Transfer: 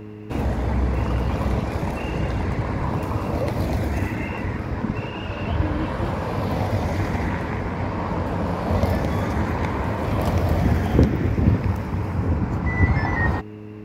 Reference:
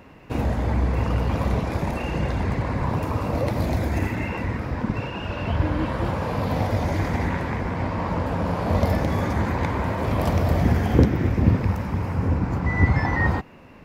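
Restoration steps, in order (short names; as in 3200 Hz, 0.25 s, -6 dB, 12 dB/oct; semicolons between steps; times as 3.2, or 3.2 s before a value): de-hum 105.6 Hz, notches 4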